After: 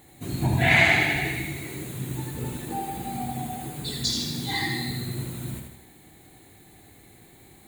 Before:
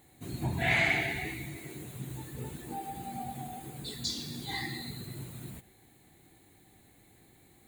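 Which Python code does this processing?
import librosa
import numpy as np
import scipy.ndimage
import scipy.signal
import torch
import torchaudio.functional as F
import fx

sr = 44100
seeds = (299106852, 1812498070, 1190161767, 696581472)

y = fx.echo_feedback(x, sr, ms=79, feedback_pct=49, wet_db=-5)
y = y * 10.0 ** (7.5 / 20.0)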